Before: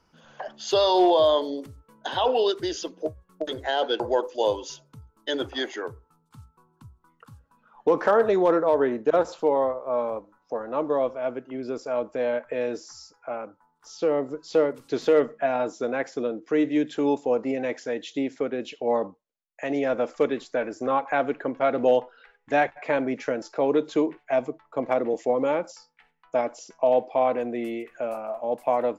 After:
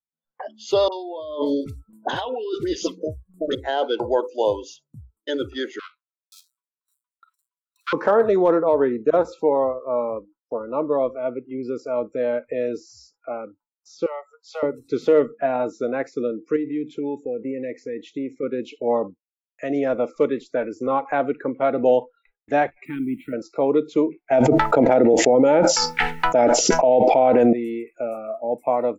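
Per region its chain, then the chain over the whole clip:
0:00.88–0:03.55: compressor whose output falls as the input rises −29 dBFS + all-pass dispersion highs, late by 43 ms, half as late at 1,200 Hz
0:05.79–0:07.93: each half-wave held at its own peak + Chebyshev high-pass with heavy ripple 980 Hz, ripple 6 dB + multiband delay without the direct sound lows, highs 530 ms, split 3,900 Hz
0:14.06–0:14.63: inverse Chebyshev high-pass filter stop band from 350 Hz + one half of a high-frequency compander decoder only
0:16.56–0:18.43: drawn EQ curve 780 Hz 0 dB, 1,200 Hz −7 dB, 1,800 Hz 0 dB, 3,900 Hz −5 dB + downward compressor 2.5 to 1, threshold −29 dBFS
0:22.85–0:23.33: bit-depth reduction 8 bits, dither none + drawn EQ curve 330 Hz 0 dB, 500 Hz −28 dB, 800 Hz −15 dB, 1,700 Hz −9 dB, 3,200 Hz −2 dB, 5,800 Hz −24 dB, 9,600 Hz −6 dB
0:24.31–0:27.53: Butterworth band-reject 1,100 Hz, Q 4.8 + envelope flattener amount 100%
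whole clip: noise reduction from a noise print of the clip's start 25 dB; noise gate with hold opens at −47 dBFS; tilt shelving filter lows +4 dB, about 1,400 Hz

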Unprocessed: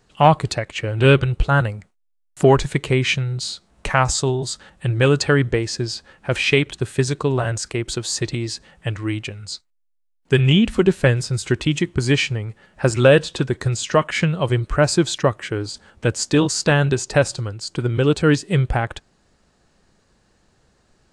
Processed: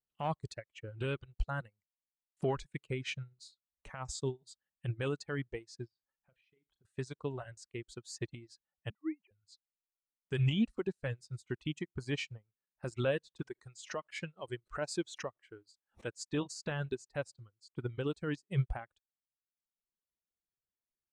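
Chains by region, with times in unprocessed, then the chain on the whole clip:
0:05.88–0:06.85: downward compressor 10 to 1, threshold −31 dBFS + high-frequency loss of the air 110 metres + flutter between parallel walls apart 6.6 metres, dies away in 0.27 s
0:08.90–0:09.31: three sine waves on the formant tracks + high-shelf EQ 2,100 Hz −4.5 dB
0:13.42–0:16.16: bass and treble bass −8 dB, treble +1 dB + background raised ahead of every attack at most 150 dB per second
whole clip: reverb reduction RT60 1.5 s; brickwall limiter −12 dBFS; expander for the loud parts 2.5 to 1, over −37 dBFS; level −9 dB

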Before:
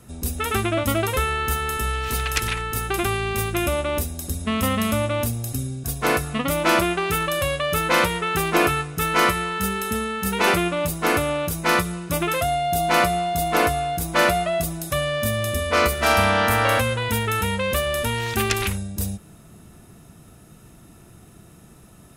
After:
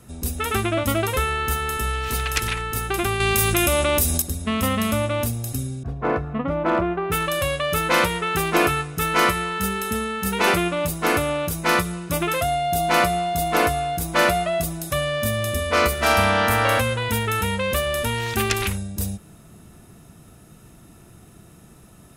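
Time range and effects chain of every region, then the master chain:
0:03.20–0:04.22: high-shelf EQ 3,200 Hz +8.5 dB + envelope flattener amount 70%
0:05.83–0:07.12: low-pass filter 1,200 Hz + hard clipping −12.5 dBFS
whole clip: no processing

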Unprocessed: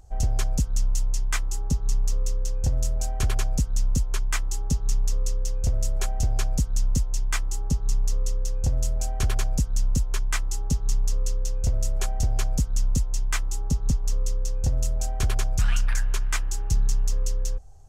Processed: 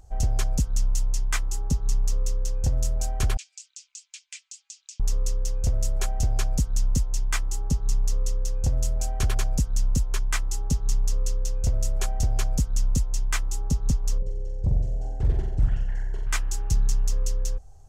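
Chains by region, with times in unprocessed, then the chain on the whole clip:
0:03.37–0:05.00: elliptic band-pass filter 2,400–8,000 Hz, stop band 80 dB + downward compressor 2.5 to 1, threshold −39 dBFS
0:14.18–0:16.27: moving average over 36 samples + flutter between parallel walls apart 7.6 metres, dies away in 0.74 s + highs frequency-modulated by the lows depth 0.9 ms
whole clip: no processing

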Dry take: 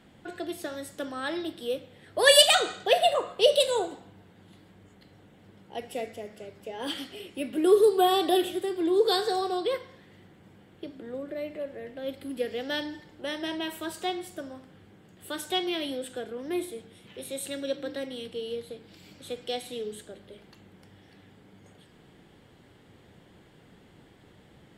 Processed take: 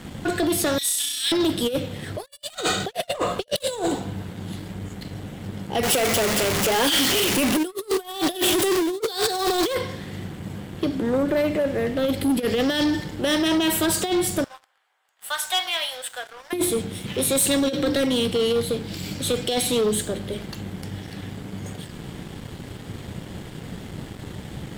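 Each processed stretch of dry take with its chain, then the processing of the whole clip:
0:00.78–0:01.32: inverse Chebyshev high-pass filter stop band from 1,300 Hz + flutter between parallel walls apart 5.6 metres, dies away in 1.1 s
0:05.83–0:09.75: converter with a step at zero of −32 dBFS + low-shelf EQ 370 Hz −11.5 dB
0:14.44–0:16.53: inverse Chebyshev high-pass filter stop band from 250 Hz, stop band 60 dB + high-shelf EQ 2,000 Hz −10.5 dB
whole clip: compressor whose output falls as the input rises −33 dBFS, ratio −0.5; bass and treble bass +8 dB, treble +6 dB; leveller curve on the samples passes 3

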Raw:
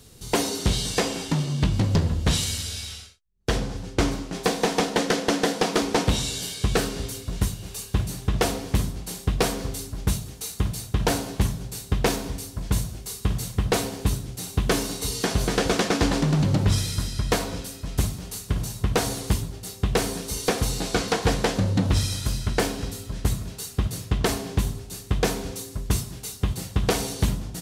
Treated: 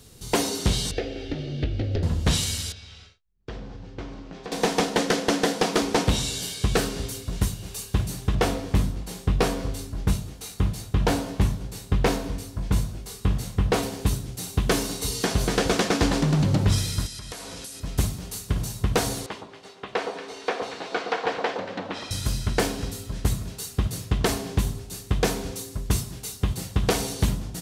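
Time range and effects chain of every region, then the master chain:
0:00.91–0:02.03: high-frequency loss of the air 290 metres + phaser with its sweep stopped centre 420 Hz, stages 4 + multiband upward and downward compressor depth 70%
0:02.72–0:04.52: downward compressor 2.5 to 1, threshold −39 dBFS + high-frequency loss of the air 160 metres + double-tracking delay 19 ms −12 dB
0:08.35–0:13.83: high-shelf EQ 4,400 Hz −8 dB + double-tracking delay 21 ms −7.5 dB
0:17.06–0:17.80: spectral tilt +2 dB per octave + downward compressor 12 to 1, threshold −33 dBFS + linear-phase brick-wall low-pass 12,000 Hz
0:19.26–0:22.11: band-pass filter 500–2,800 Hz + delay that swaps between a low-pass and a high-pass 116 ms, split 1,100 Hz, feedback 52%, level −5.5 dB
whole clip: no processing

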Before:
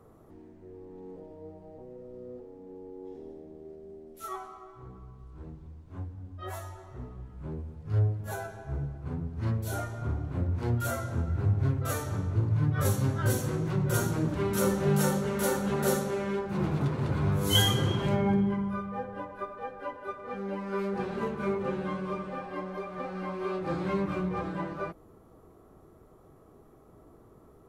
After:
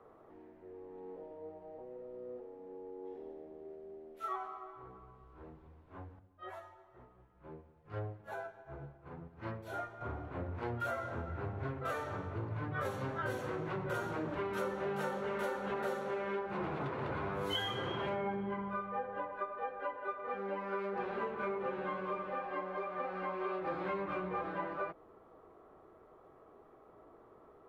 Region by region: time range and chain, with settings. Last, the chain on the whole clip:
0:06.19–0:10.01: comb filter 5.8 ms, depth 33% + expander for the loud parts, over −47 dBFS
whole clip: three-way crossover with the lows and the highs turned down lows −14 dB, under 390 Hz, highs −21 dB, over 3,200 Hz; mains-hum notches 50/100/150 Hz; downward compressor, threshold −35 dBFS; level +1.5 dB

